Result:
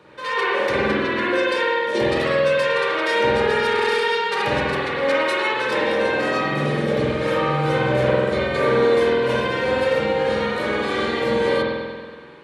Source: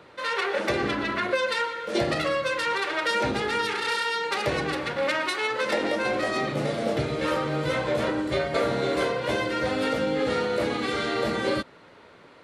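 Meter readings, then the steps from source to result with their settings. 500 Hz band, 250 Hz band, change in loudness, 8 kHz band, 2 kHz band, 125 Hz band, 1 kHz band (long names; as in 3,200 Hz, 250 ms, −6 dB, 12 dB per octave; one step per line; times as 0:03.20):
+7.5 dB, +4.0 dB, +6.0 dB, −1.0 dB, +6.0 dB, +6.5 dB, +5.5 dB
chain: notch comb filter 680 Hz
spring reverb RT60 1.6 s, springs 47 ms, chirp 60 ms, DRR −6.5 dB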